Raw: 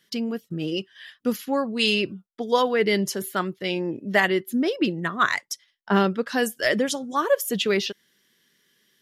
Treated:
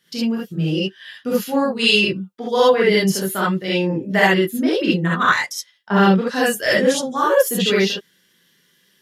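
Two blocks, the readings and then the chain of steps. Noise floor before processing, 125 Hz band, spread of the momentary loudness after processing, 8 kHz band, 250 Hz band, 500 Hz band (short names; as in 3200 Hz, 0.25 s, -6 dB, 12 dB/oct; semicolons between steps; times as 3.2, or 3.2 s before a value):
-69 dBFS, +10.0 dB, 9 LU, +6.0 dB, +6.5 dB, +6.5 dB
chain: non-linear reverb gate 90 ms rising, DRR -7 dB; gain -1.5 dB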